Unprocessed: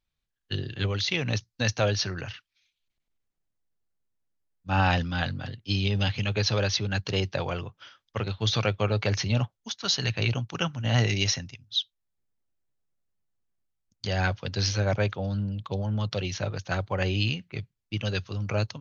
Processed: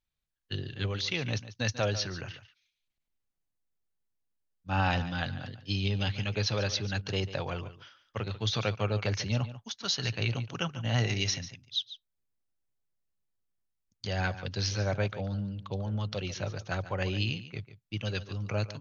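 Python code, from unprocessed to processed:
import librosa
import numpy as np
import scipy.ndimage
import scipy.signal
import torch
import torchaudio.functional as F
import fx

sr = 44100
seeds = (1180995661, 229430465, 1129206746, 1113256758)

y = x + 10.0 ** (-14.0 / 20.0) * np.pad(x, (int(144 * sr / 1000.0), 0))[:len(x)]
y = F.gain(torch.from_numpy(y), -4.5).numpy()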